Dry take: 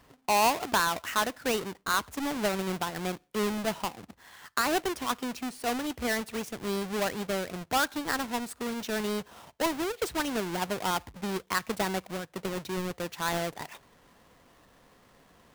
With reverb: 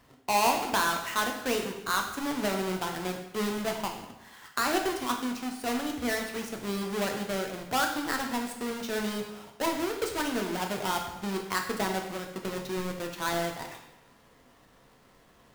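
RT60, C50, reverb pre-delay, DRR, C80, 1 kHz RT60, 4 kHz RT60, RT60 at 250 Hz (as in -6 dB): 0.90 s, 6.5 dB, 5 ms, 2.5 dB, 8.5 dB, 0.95 s, 0.85 s, 0.90 s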